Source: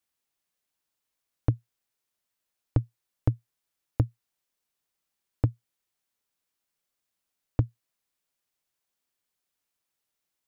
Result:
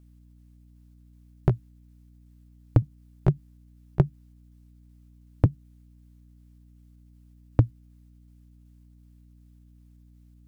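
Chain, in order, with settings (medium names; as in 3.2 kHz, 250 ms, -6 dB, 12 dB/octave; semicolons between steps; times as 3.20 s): pitch shift switched off and on +4 st, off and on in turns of 188 ms; hum 60 Hz, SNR 22 dB; trim +5 dB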